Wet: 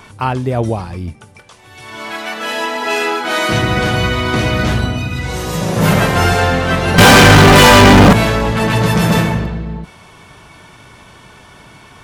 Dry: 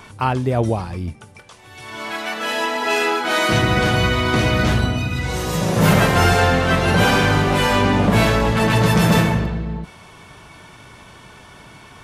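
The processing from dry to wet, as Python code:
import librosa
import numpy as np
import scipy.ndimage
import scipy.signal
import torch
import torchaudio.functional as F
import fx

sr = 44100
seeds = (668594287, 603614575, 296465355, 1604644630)

y = fx.leveller(x, sr, passes=5, at=(6.98, 8.13))
y = y * librosa.db_to_amplitude(2.0)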